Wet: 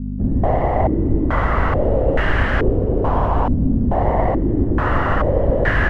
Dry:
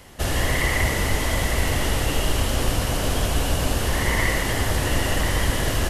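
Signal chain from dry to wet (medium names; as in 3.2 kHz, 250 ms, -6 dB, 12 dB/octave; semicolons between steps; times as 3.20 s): bit crusher 7-bit; hum 50 Hz, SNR 10 dB; step-sequenced low-pass 2.3 Hz 240–1700 Hz; trim +3.5 dB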